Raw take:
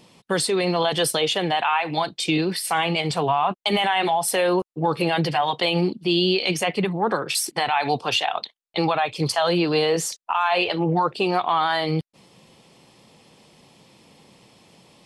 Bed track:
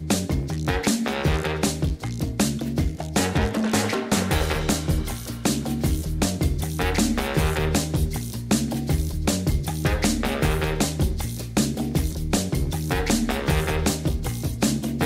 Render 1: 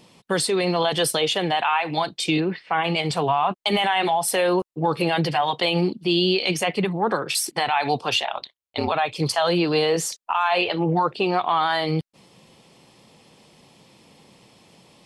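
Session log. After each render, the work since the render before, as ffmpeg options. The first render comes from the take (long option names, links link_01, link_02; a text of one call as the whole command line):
ffmpeg -i in.wav -filter_complex "[0:a]asplit=3[link_01][link_02][link_03];[link_01]afade=type=out:start_time=2.39:duration=0.02[link_04];[link_02]lowpass=frequency=2600:width=0.5412,lowpass=frequency=2600:width=1.3066,afade=type=in:start_time=2.39:duration=0.02,afade=type=out:start_time=2.83:duration=0.02[link_05];[link_03]afade=type=in:start_time=2.83:duration=0.02[link_06];[link_04][link_05][link_06]amix=inputs=3:normalize=0,asettb=1/sr,asplit=3[link_07][link_08][link_09];[link_07]atrim=end=8.214[link_10];[link_08]atrim=start=8.21:end=8.92,asetpts=PTS-STARTPTS,afade=type=in:duration=0.004:curve=qsin,afade=type=out:start_time=0.706:duration=0.004:curve=qsin,aeval=exprs='val(0)*sin(2*PI*65*n/s)':channel_layout=same[link_11];[link_09]atrim=start=8.916[link_12];[link_10][link_11]acrossfade=duration=0.004:curve1=hsin:curve2=qsin[link_13];[link_13][link_12]acrossfade=duration=0.004:curve1=qsin:curve2=hsin,asettb=1/sr,asplit=3[link_14][link_15][link_16];[link_14]atrim=end=10.614[link_17];[link_15]atrim=start=10.61:end=11.53,asetpts=PTS-STARTPTS,afade=type=in:duration=0.004:curve=qsin,afade=type=out:start_time=0.916:duration=0.004:curve=qsin,acrossover=split=5400[link_18][link_19];[link_19]acompressor=threshold=-58dB:ratio=4:attack=1:release=60[link_20];[link_18][link_20]amix=inputs=2:normalize=0[link_21];[link_16]atrim=start=11.526[link_22];[link_17][link_21]acrossfade=duration=0.004:curve1=hsin:curve2=qsin[link_23];[link_23][link_22]acrossfade=duration=0.004:curve1=qsin:curve2=hsin" out.wav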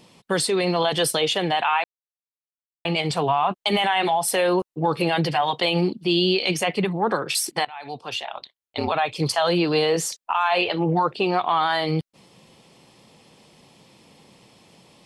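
ffmpeg -i in.wav -filter_complex "[0:a]asplit=4[link_01][link_02][link_03][link_04];[link_01]atrim=end=1.84,asetpts=PTS-STARTPTS,afade=type=out:start_time=1.836:duration=0.004:curve=hsin[link_05];[link_02]atrim=start=1.84:end=2.85,asetpts=PTS-STARTPTS,volume=0[link_06];[link_03]atrim=start=2.85:end=7.65,asetpts=PTS-STARTPTS,afade=type=in:duration=0.004:curve=hsin,afade=type=out:start_time=4.796:duration=0.004:curve=hsin:silence=0.0891251[link_07];[link_04]atrim=start=7.65,asetpts=PTS-STARTPTS,afade=type=in:duration=1.33:silence=0.0891251[link_08];[link_05][link_06][link_07][link_08]concat=n=4:v=0:a=1" out.wav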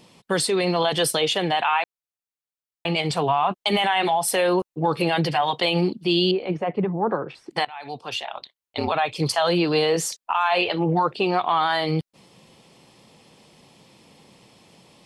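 ffmpeg -i in.wav -filter_complex "[0:a]asettb=1/sr,asplit=3[link_01][link_02][link_03];[link_01]atrim=end=6.314[link_04];[link_02]atrim=start=6.31:end=7.51,asetpts=PTS-STARTPTS,afade=type=in:duration=0.004:curve=qsin,afade=type=out:start_time=1.196:duration=0.004:curve=qsin,lowpass=1100[link_05];[link_03]atrim=start=7.506[link_06];[link_04][link_05]acrossfade=duration=0.004:curve1=hsin:curve2=qsin[link_07];[link_07][link_06]acrossfade=duration=0.004:curve1=qsin:curve2=hsin" out.wav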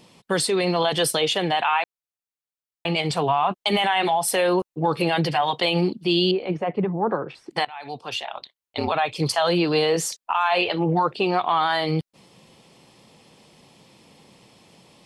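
ffmpeg -i in.wav -af anull out.wav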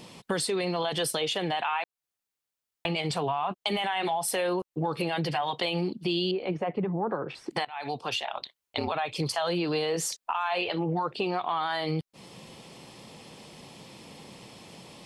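ffmpeg -i in.wav -filter_complex "[0:a]asplit=2[link_01][link_02];[link_02]alimiter=limit=-18.5dB:level=0:latency=1:release=90,volume=-2dB[link_03];[link_01][link_03]amix=inputs=2:normalize=0,acompressor=threshold=-31dB:ratio=2.5" out.wav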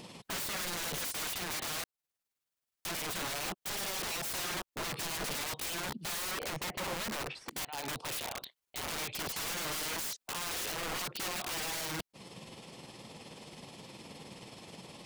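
ffmpeg -i in.wav -af "tremolo=f=19:d=0.41,aeval=exprs='(mod(39.8*val(0)+1,2)-1)/39.8':channel_layout=same" out.wav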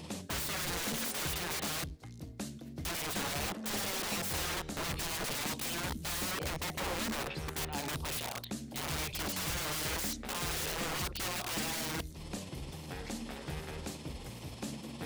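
ffmpeg -i in.wav -i bed.wav -filter_complex "[1:a]volume=-19.5dB[link_01];[0:a][link_01]amix=inputs=2:normalize=0" out.wav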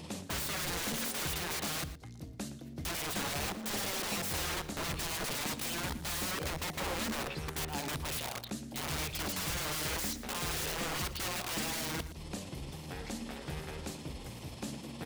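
ffmpeg -i in.wav -filter_complex "[0:a]asplit=2[link_01][link_02];[link_02]adelay=116.6,volume=-14dB,highshelf=frequency=4000:gain=-2.62[link_03];[link_01][link_03]amix=inputs=2:normalize=0" out.wav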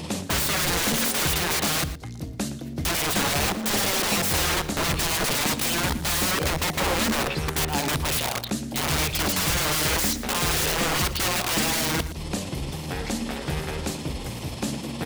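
ffmpeg -i in.wav -af "volume=12dB" out.wav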